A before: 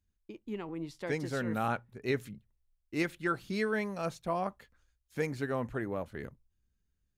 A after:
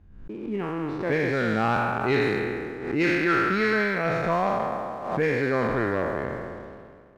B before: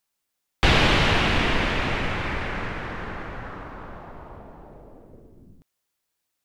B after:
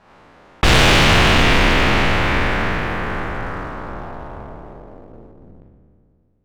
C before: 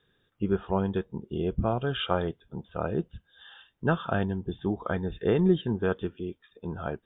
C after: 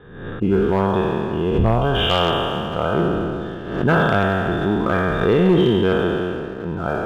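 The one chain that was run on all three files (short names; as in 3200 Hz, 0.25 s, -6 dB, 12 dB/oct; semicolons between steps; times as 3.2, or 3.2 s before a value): spectral trails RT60 2.52 s; low-pass opened by the level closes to 1200 Hz, open at -18 dBFS; sample leveller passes 1; overloaded stage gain 11.5 dB; backwards sustainer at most 68 dB/s; gain +2.5 dB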